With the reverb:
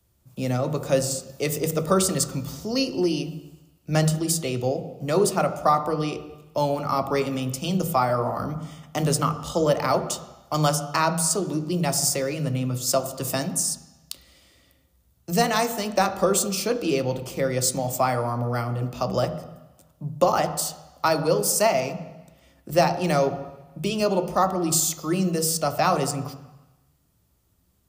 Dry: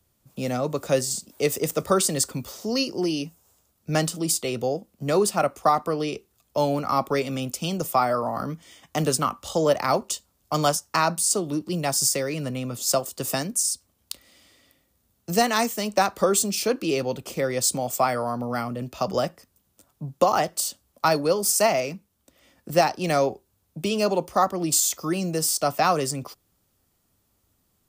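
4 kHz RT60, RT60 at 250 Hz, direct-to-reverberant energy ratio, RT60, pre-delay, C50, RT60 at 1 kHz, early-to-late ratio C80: 1.2 s, 1.0 s, 8.5 dB, 1.0 s, 3 ms, 11.5 dB, 1.1 s, 13.5 dB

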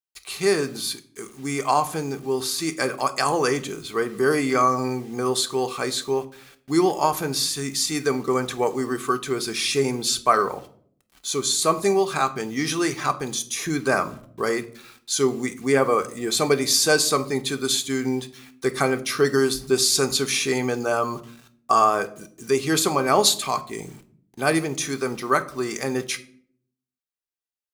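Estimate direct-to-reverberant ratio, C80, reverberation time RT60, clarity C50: 6.5 dB, 21.0 dB, 0.60 s, 16.5 dB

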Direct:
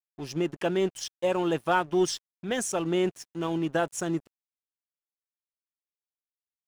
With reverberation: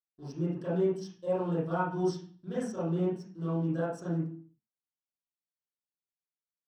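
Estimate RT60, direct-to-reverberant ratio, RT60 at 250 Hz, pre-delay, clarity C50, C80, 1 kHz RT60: 0.45 s, -11.0 dB, 0.70 s, 27 ms, 0.0 dB, 8.5 dB, 0.45 s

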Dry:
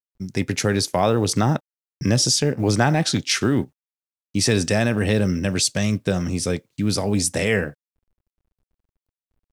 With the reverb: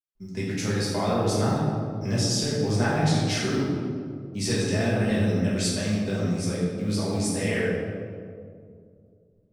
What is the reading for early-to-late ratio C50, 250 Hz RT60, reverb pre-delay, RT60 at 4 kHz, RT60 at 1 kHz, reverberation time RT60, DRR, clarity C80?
-1.0 dB, 2.9 s, 4 ms, 1.1 s, 1.9 s, 2.3 s, -8.5 dB, 1.0 dB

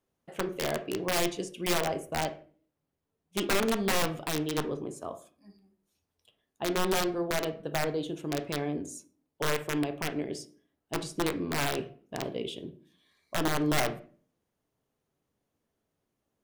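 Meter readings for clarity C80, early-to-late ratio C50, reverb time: 19.5 dB, 14.0 dB, 0.40 s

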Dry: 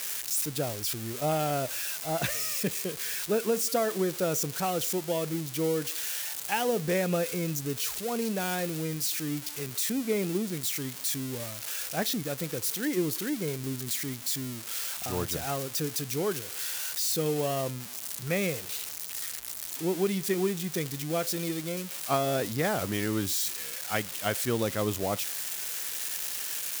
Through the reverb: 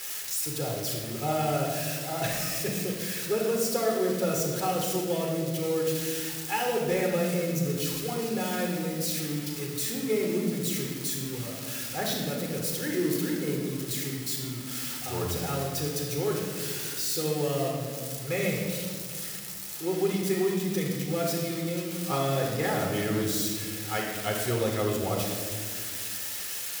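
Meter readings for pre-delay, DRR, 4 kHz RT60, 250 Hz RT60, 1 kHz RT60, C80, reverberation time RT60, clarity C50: 8 ms, -1.5 dB, 1.2 s, 3.0 s, 1.5 s, 4.0 dB, 1.9 s, 1.5 dB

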